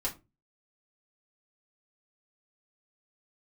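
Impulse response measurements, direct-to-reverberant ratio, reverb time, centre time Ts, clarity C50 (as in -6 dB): -5.5 dB, 0.25 s, 14 ms, 14.5 dB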